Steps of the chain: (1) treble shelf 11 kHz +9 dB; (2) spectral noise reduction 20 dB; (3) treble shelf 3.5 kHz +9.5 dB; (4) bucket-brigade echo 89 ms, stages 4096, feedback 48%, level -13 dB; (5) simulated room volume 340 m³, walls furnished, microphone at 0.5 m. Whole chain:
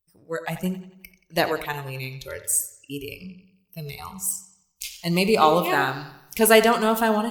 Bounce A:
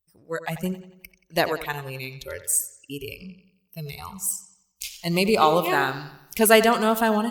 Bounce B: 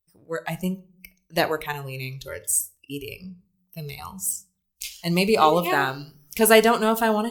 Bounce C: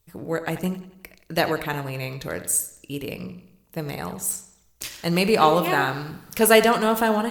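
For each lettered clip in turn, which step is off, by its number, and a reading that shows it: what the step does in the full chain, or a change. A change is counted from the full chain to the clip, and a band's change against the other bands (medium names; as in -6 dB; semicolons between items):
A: 5, echo-to-direct -8.5 dB to -12.0 dB; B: 4, echo-to-direct -8.5 dB to -11.5 dB; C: 2, momentary loudness spread change -2 LU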